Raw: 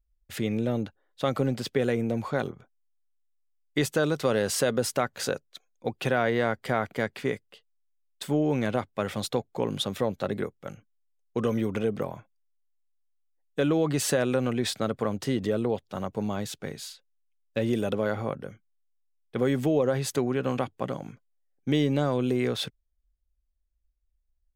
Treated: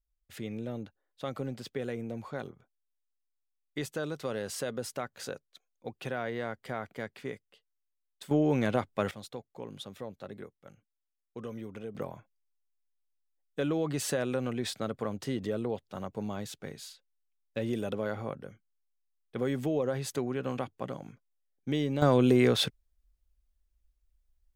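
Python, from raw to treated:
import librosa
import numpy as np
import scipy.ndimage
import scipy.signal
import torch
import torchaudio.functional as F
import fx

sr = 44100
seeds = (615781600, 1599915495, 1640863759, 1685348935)

y = fx.gain(x, sr, db=fx.steps((0.0, -10.0), (8.31, -1.0), (9.11, -14.0), (11.95, -6.0), (22.02, 3.5)))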